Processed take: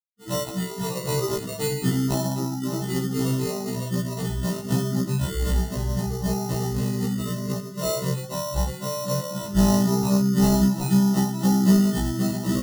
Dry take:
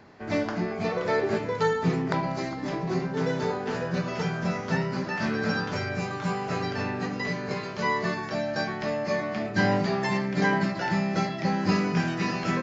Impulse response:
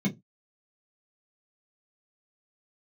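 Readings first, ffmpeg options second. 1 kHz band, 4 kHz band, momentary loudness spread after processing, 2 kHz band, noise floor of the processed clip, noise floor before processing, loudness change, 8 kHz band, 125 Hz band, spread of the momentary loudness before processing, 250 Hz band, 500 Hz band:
−3.5 dB, +3.5 dB, 9 LU, −10.0 dB, −35 dBFS, −35 dBFS, +3.5 dB, can't be measured, +6.5 dB, 6 LU, +6.0 dB, −0.5 dB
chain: -af "afftfilt=real='re*gte(hypot(re,im),0.0631)':imag='im*gte(hypot(re,im),0.0631)':win_size=1024:overlap=0.75,aresample=11025,acrusher=bits=3:mode=log:mix=0:aa=0.000001,aresample=44100,adynamicequalizer=threshold=0.00891:dfrequency=490:dqfactor=3:tfrequency=490:tqfactor=3:attack=5:release=100:ratio=0.375:range=2.5:mode=cutabove:tftype=bell,areverse,acompressor=mode=upward:threshold=-34dB:ratio=2.5,areverse,afftdn=noise_reduction=35:noise_floor=-35,acrusher=samples=27:mix=1:aa=0.000001,asuperstop=centerf=2300:order=8:qfactor=4.7,bass=frequency=250:gain=9,treble=frequency=4000:gain=8,afftfilt=real='re*1.73*eq(mod(b,3),0)':imag='im*1.73*eq(mod(b,3),0)':win_size=2048:overlap=0.75,volume=1dB"

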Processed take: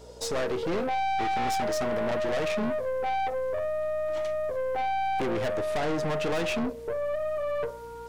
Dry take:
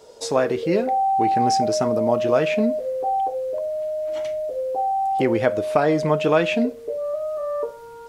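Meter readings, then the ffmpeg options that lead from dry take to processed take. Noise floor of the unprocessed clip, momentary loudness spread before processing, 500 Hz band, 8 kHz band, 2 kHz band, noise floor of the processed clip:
−40 dBFS, 8 LU, −7.0 dB, −5.0 dB, −3.5 dB, −41 dBFS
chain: -af "aeval=exprs='(tanh(20*val(0)+0.4)-tanh(0.4))/20':channel_layout=same,aeval=exprs='val(0)+0.00282*(sin(2*PI*60*n/s)+sin(2*PI*2*60*n/s)/2+sin(2*PI*3*60*n/s)/3+sin(2*PI*4*60*n/s)/4+sin(2*PI*5*60*n/s)/5)':channel_layout=same"

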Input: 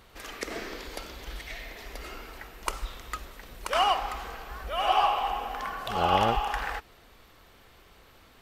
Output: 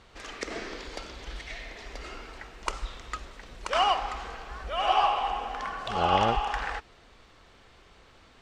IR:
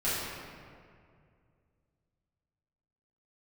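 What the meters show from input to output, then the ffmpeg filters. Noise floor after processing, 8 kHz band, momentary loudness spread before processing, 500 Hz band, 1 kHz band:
−57 dBFS, −2.0 dB, 17 LU, 0.0 dB, 0.0 dB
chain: -af "lowpass=frequency=7900:width=0.5412,lowpass=frequency=7900:width=1.3066"

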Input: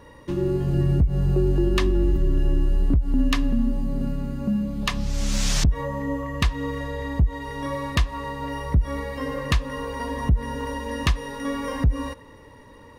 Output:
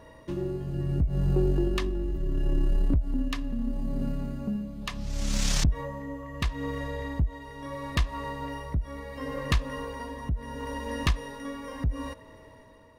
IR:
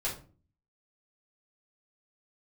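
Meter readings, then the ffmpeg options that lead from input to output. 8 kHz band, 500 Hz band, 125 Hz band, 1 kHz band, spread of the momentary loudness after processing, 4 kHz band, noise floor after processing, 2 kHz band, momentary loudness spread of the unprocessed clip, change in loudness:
−4.0 dB, −6.0 dB, −6.0 dB, −6.0 dB, 11 LU, −5.0 dB, −51 dBFS, −6.0 dB, 9 LU, −6.0 dB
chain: -af "aeval=exprs='val(0)+0.00251*sin(2*PI*640*n/s)':channel_layout=same,tremolo=f=0.73:d=0.54,aeval=exprs='0.376*(cos(1*acos(clip(val(0)/0.376,-1,1)))-cos(1*PI/2))+0.0237*(cos(4*acos(clip(val(0)/0.376,-1,1)))-cos(4*PI/2))':channel_layout=same,volume=-3.5dB"

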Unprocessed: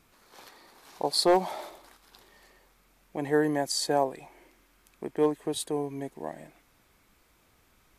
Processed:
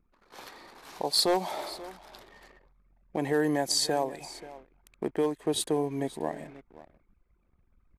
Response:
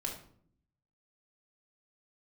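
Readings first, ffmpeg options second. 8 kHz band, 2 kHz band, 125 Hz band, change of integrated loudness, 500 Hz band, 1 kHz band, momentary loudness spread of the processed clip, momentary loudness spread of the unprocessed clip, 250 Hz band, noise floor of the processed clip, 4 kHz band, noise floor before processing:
+2.5 dB, 0.0 dB, +1.0 dB, −0.5 dB, −1.5 dB, −2.0 dB, 22 LU, 17 LU, −0.5 dB, −69 dBFS, +2.5 dB, −65 dBFS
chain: -filter_complex "[0:a]acrossover=split=2800[link_01][link_02];[link_01]alimiter=limit=-23dB:level=0:latency=1:release=365[link_03];[link_02]highshelf=frequency=4200:gain=-3.5[link_04];[link_03][link_04]amix=inputs=2:normalize=0,asoftclip=type=hard:threshold=-23.5dB,asplit=2[link_05][link_06];[link_06]aecho=0:1:533:0.126[link_07];[link_05][link_07]amix=inputs=2:normalize=0,anlmdn=0.0001,aresample=32000,aresample=44100,dynaudnorm=framelen=140:gausssize=5:maxgain=3dB,volume=2.5dB"

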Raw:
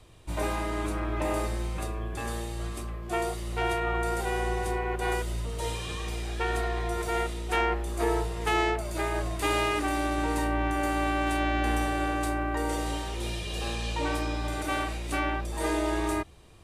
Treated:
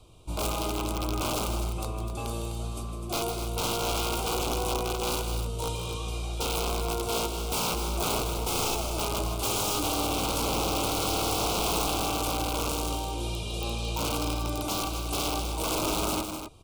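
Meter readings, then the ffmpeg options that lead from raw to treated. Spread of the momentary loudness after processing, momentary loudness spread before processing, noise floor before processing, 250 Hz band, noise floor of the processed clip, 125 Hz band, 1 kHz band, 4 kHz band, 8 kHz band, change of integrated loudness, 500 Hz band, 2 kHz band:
7 LU, 7 LU, −36 dBFS, −2.0 dB, −35 dBFS, 0.0 dB, −1.0 dB, +6.5 dB, +8.5 dB, +0.5 dB, −1.0 dB, −6.0 dB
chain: -filter_complex "[0:a]aeval=exprs='(mod(12.6*val(0)+1,2)-1)/12.6':channel_layout=same,asuperstop=centerf=1800:order=4:qfactor=1.6,asplit=2[link_01][link_02];[link_02]aecho=0:1:157.4|253.6:0.355|0.355[link_03];[link_01][link_03]amix=inputs=2:normalize=0"

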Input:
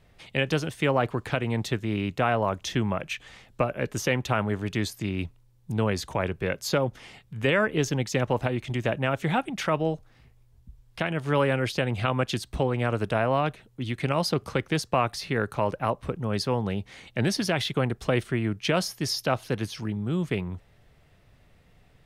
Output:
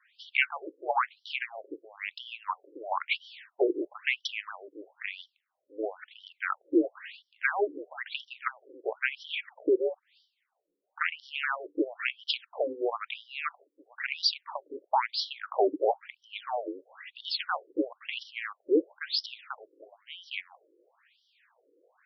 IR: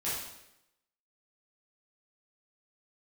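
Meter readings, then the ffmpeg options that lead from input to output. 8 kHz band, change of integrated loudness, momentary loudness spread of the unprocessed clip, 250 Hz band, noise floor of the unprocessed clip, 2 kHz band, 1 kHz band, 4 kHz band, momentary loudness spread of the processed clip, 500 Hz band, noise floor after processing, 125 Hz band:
below −15 dB, −4.5 dB, 7 LU, −7.5 dB, −59 dBFS, −2.0 dB, −4.0 dB, −1.0 dB, 15 LU, −5.0 dB, −81 dBFS, below −40 dB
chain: -af "afreqshift=-230,adynamicequalizer=threshold=0.00631:dfrequency=180:dqfactor=2.9:tfrequency=180:tqfactor=2.9:attack=5:release=100:ratio=0.375:range=2:mode=cutabove:tftype=bell,afftfilt=real='re*between(b*sr/1024,380*pow(4200/380,0.5+0.5*sin(2*PI*1*pts/sr))/1.41,380*pow(4200/380,0.5+0.5*sin(2*PI*1*pts/sr))*1.41)':imag='im*between(b*sr/1024,380*pow(4200/380,0.5+0.5*sin(2*PI*1*pts/sr))/1.41,380*pow(4200/380,0.5+0.5*sin(2*PI*1*pts/sr))*1.41)':win_size=1024:overlap=0.75,volume=5.5dB"

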